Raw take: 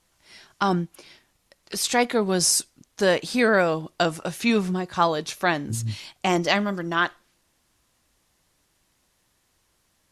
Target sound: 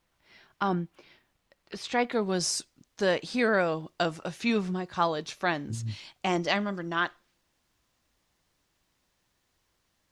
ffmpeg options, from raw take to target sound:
ffmpeg -i in.wav -af "asetnsamples=nb_out_samples=441:pad=0,asendcmd='2.12 lowpass f 6400',lowpass=3300,acrusher=bits=11:mix=0:aa=0.000001,volume=-5.5dB" out.wav

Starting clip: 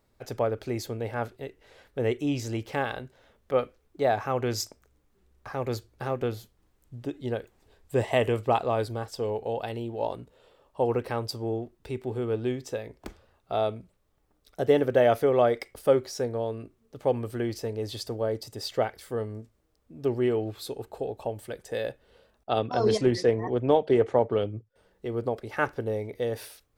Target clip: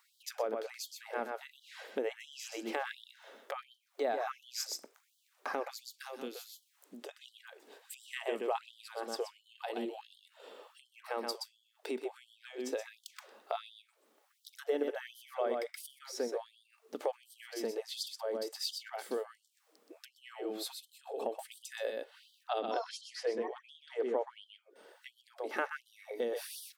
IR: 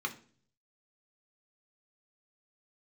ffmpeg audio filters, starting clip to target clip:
-filter_complex "[0:a]aecho=1:1:125:0.501,asettb=1/sr,asplit=3[link_01][link_02][link_03];[link_01]atrim=end=5.704[link_04];[link_02]atrim=start=5.7:end=7.09,asetpts=PTS-STARTPTS,afade=type=in:duration=0.004:curve=qsin,afade=type=out:start_time=1.386:duration=0.004:curve=qsin,acrossover=split=210|3000[link_05][link_06][link_07];[link_06]acompressor=threshold=-55dB:ratio=2[link_08];[link_05][link_08][link_07]amix=inputs=3:normalize=0[link_09];[link_03]atrim=start=7.086[link_10];[link_04][link_09]acrossfade=duration=0.004:curve1=hsin:curve2=qsin[link_11];[link_11][link_10]acrossfade=duration=0.004:curve1=qsin:curve2=hsin,acrossover=split=160|1600[link_12][link_13][link_14];[link_12]alimiter=level_in=13dB:limit=-24dB:level=0:latency=1,volume=-13dB[link_15];[link_15][link_13][link_14]amix=inputs=3:normalize=0,acompressor=threshold=-43dB:ratio=3,afftfilt=real='re*gte(b*sr/1024,200*pow(3000/200,0.5+0.5*sin(2*PI*1.4*pts/sr)))':imag='im*gte(b*sr/1024,200*pow(3000/200,0.5+0.5*sin(2*PI*1.4*pts/sr)))':win_size=1024:overlap=0.75,volume=7dB"

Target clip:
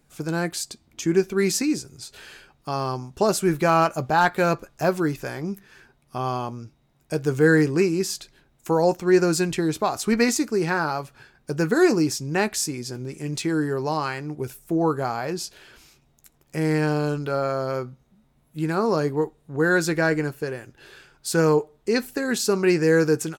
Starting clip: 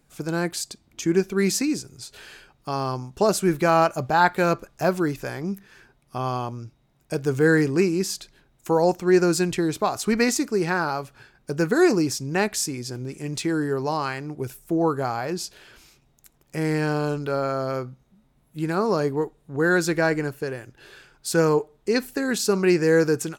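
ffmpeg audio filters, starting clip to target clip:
ffmpeg -i in.wav -filter_complex "[0:a]volume=8.5dB,asoftclip=hard,volume=-8.5dB,asplit=2[link_01][link_02];[link_02]adelay=13,volume=-12dB[link_03];[link_01][link_03]amix=inputs=2:normalize=0" out.wav

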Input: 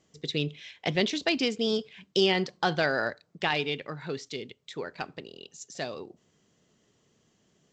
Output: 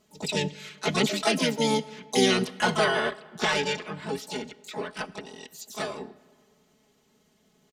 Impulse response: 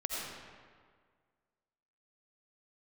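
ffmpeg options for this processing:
-filter_complex "[0:a]asplit=4[link_01][link_02][link_03][link_04];[link_02]asetrate=29433,aresample=44100,atempo=1.49831,volume=-4dB[link_05];[link_03]asetrate=55563,aresample=44100,atempo=0.793701,volume=-6dB[link_06];[link_04]asetrate=88200,aresample=44100,atempo=0.5,volume=-5dB[link_07];[link_01][link_05][link_06][link_07]amix=inputs=4:normalize=0,aecho=1:1:4.7:0.8,asplit=2[link_08][link_09];[1:a]atrim=start_sample=2205[link_10];[link_09][link_10]afir=irnorm=-1:irlink=0,volume=-22.5dB[link_11];[link_08][link_11]amix=inputs=2:normalize=0,volume=-3dB"

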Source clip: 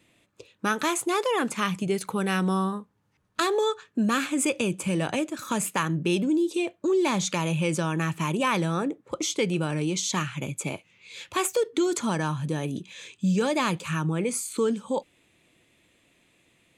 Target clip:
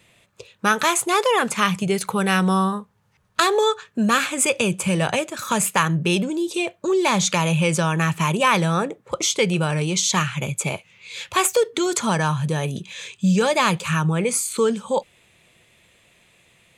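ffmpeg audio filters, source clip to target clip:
ffmpeg -i in.wav -af "equalizer=frequency=290:width_type=o:width=0.52:gain=-13.5,volume=8dB" out.wav

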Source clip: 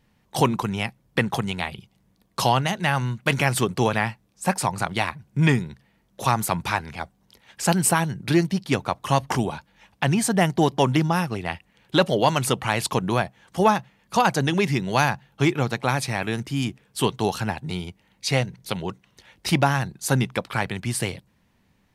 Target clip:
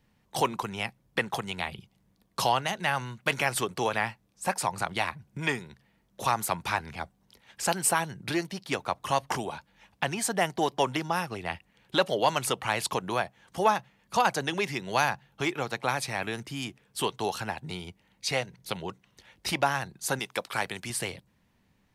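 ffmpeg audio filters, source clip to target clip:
ffmpeg -i in.wav -filter_complex "[0:a]asettb=1/sr,asplit=3[link_01][link_02][link_03];[link_01]atrim=end=20.194[link_04];[link_02]atrim=start=20.19:end=20.9,asetpts=PTS-STARTPTS,afade=type=in:duration=0.004:curve=qsin,afade=type=out:start_time=0.706:duration=0.004:curve=qsin,bass=frequency=250:gain=-10,treble=frequency=4000:gain=7[link_05];[link_03]atrim=start=20.896[link_06];[link_04][link_05]acrossfade=duration=0.004:curve1=hsin:curve2=qsin[link_07];[link_07][link_06]acrossfade=duration=0.004:curve1=qsin:curve2=hsin,acrossover=split=370|4000[link_08][link_09][link_10];[link_08]acompressor=threshold=-34dB:ratio=6[link_11];[link_11][link_09][link_10]amix=inputs=3:normalize=0,volume=-4dB" out.wav

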